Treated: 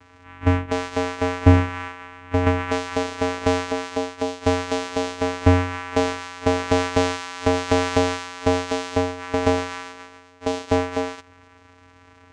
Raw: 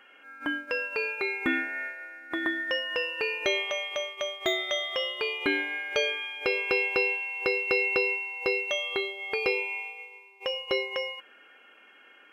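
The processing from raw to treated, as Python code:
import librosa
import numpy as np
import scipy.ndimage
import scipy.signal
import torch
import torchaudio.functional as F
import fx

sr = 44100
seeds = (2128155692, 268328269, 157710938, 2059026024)

y = fx.peak_eq(x, sr, hz=180.0, db=11.5, octaves=1.7)
y = fx.vocoder(y, sr, bands=4, carrier='square', carrier_hz=89.7)
y = F.gain(torch.from_numpy(y), 6.5).numpy()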